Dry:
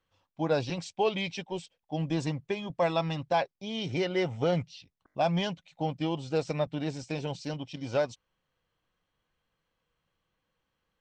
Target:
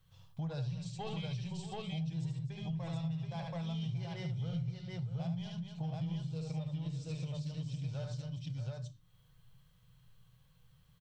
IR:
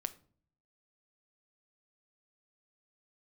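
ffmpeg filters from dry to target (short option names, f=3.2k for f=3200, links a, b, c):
-filter_complex "[0:a]bandreject=f=50:t=h:w=6,bandreject=f=100:t=h:w=6,bandreject=f=150:t=h:w=6,bandreject=f=200:t=h:w=6,bandreject=f=250:t=h:w=6,bandreject=f=300:t=h:w=6,asoftclip=type=tanh:threshold=-18dB,asettb=1/sr,asplit=3[a][b][c];[a]atrim=end=6.264[d];[b]atrim=start=6.26:end=7.64,asetpts=PTS-STARTPTS,afade=t=in:d=0.004:c=qsin,afade=t=out:st=1.376:d=0.004:c=qsin,equalizer=f=125:t=o:w=0.33:g=-9,equalizer=f=800:t=o:w=0.33:g=-10,equalizer=f=1.6k:t=o:w=0.33:g=-8[e];[c]atrim=start=7.636[f];[d][e]acrossfade=d=0.004:c1=hsin:c2=qsin[g];[g][f]acrossfade=d=0.004:c1=qsin:c2=hsin,aexciter=amount=2.7:drive=2.5:freq=3.3k,lowshelf=f=200:t=q:w=3:g=13.5,aecho=1:1:74|249|631|729:0.596|0.2|0.188|0.708[h];[1:a]atrim=start_sample=2205,atrim=end_sample=6174[i];[h][i]afir=irnorm=-1:irlink=0,acompressor=threshold=-43dB:ratio=4,volume=2dB"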